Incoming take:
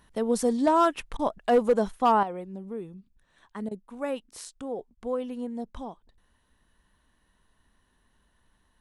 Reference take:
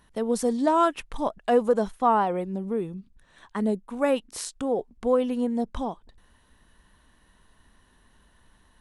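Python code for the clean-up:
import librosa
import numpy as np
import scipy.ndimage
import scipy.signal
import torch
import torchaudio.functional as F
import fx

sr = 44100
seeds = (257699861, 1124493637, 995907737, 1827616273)

y = fx.fix_declip(x, sr, threshold_db=-14.0)
y = fx.fix_interpolate(y, sr, at_s=(1.17, 3.69, 4.95), length_ms=21.0)
y = fx.fix_level(y, sr, at_s=2.23, step_db=8.0)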